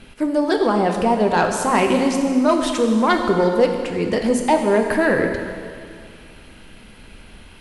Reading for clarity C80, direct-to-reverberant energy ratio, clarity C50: 6.0 dB, 3.0 dB, 5.0 dB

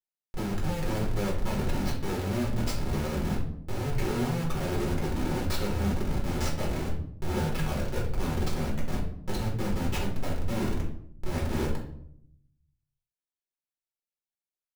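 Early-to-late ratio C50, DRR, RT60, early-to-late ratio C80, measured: 6.5 dB, −3.0 dB, 0.70 s, 10.5 dB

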